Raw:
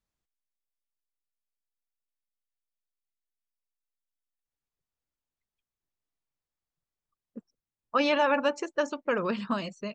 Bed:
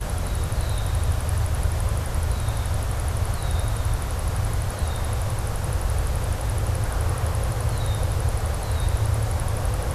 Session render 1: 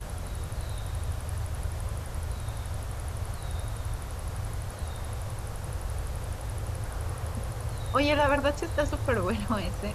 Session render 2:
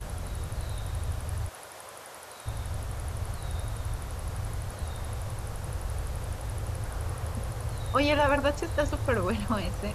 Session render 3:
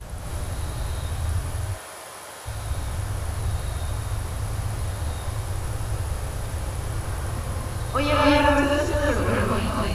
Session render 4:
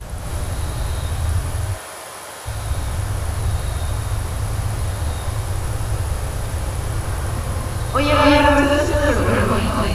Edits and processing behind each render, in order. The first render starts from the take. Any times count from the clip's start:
add bed -9.5 dB
1.49–2.46 HPF 480 Hz
non-linear reverb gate 0.31 s rising, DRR -5 dB
gain +5.5 dB; limiter -2 dBFS, peak gain reduction 1.5 dB

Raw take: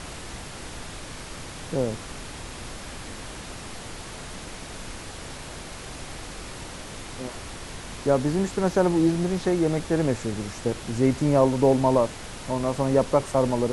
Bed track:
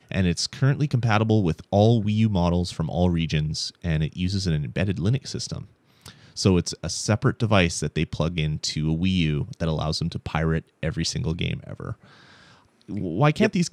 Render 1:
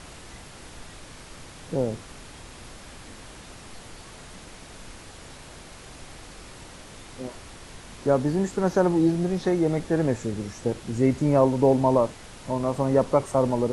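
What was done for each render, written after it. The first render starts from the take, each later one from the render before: noise print and reduce 6 dB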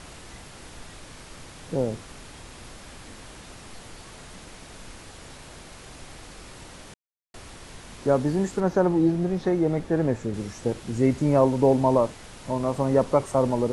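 6.94–7.34 mute; 8.6–10.34 high shelf 3000 Hz -8 dB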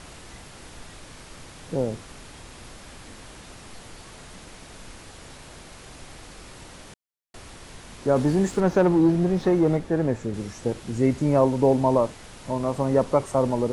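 8.16–9.77 sample leveller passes 1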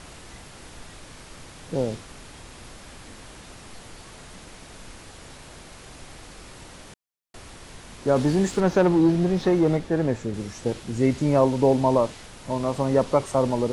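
dynamic EQ 3900 Hz, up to +5 dB, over -46 dBFS, Q 0.73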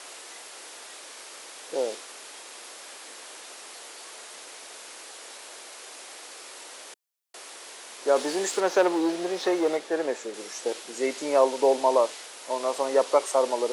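HPF 390 Hz 24 dB/oct; high shelf 3500 Hz +6.5 dB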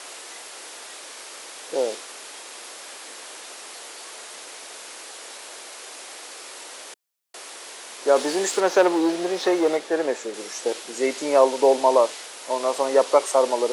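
gain +4 dB

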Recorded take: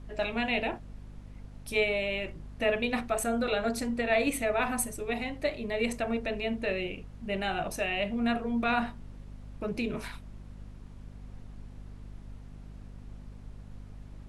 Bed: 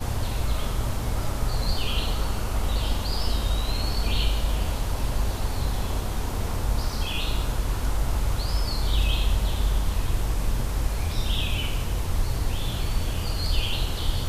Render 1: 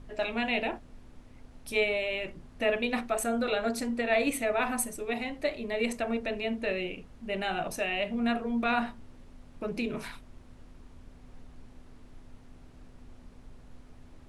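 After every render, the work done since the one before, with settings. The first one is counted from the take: notches 50/100/150/200 Hz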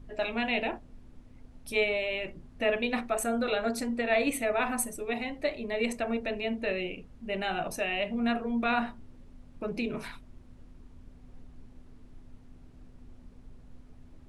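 denoiser 6 dB, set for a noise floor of -53 dBFS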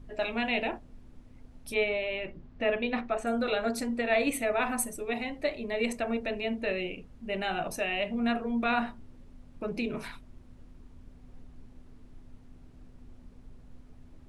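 1.74–3.27 air absorption 140 m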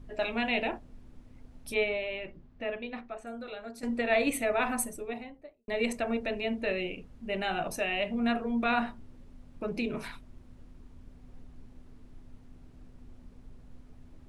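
1.71–3.83 fade out quadratic, to -13 dB; 4.71–5.68 studio fade out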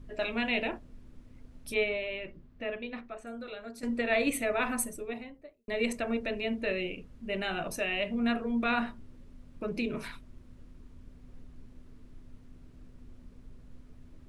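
bell 790 Hz -6.5 dB 0.4 oct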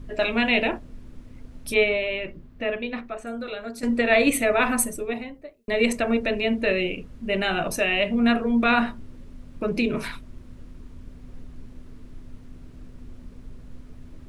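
gain +9 dB

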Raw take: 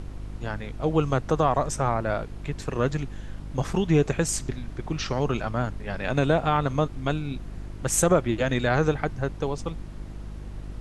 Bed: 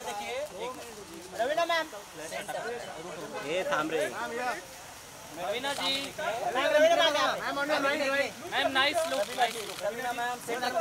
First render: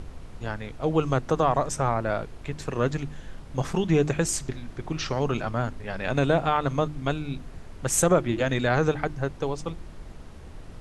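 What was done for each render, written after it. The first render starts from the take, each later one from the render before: de-hum 50 Hz, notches 7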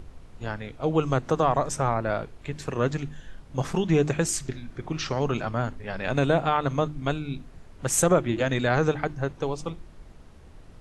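noise print and reduce 6 dB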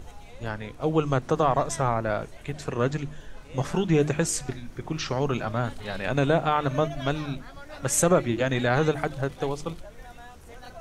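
add bed -15 dB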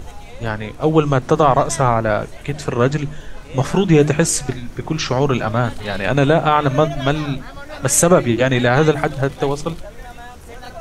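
gain +9.5 dB; limiter -1 dBFS, peak gain reduction 3 dB

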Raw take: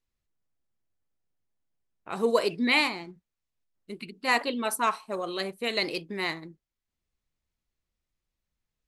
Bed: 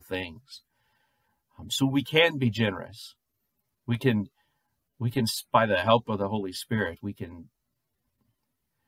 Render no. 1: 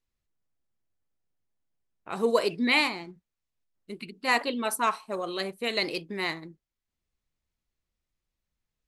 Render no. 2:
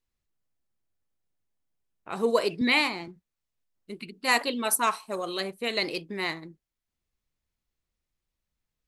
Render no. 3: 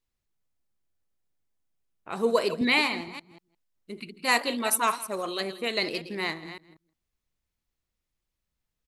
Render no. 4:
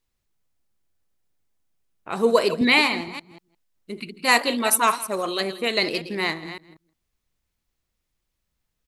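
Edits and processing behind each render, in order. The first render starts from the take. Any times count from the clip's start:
nothing audible
2.61–3.08 three-band squash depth 40%; 4.24–5.4 high shelf 5200 Hz +9.5 dB
reverse delay 0.188 s, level -12.5 dB; echo 0.165 s -20 dB
gain +5.5 dB

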